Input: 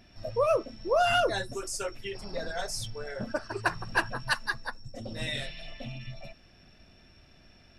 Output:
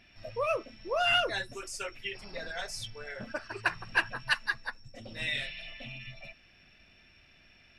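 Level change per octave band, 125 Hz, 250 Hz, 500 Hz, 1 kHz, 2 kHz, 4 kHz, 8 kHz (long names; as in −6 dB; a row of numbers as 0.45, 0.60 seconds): −7.5, −7.0, −6.5, −4.5, +1.0, +1.5, −5.5 decibels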